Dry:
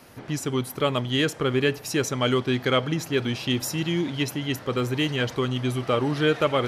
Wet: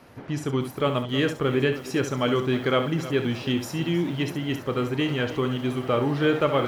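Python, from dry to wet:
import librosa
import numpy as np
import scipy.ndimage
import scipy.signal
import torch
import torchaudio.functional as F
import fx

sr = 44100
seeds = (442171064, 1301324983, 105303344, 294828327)

y = fx.high_shelf(x, sr, hz=4000.0, db=-11.5)
y = fx.room_early_taps(y, sr, ms=(29, 68), db=(-13.0, -10.0))
y = fx.echo_crushed(y, sr, ms=314, feedback_pct=35, bits=7, wet_db=-14.5)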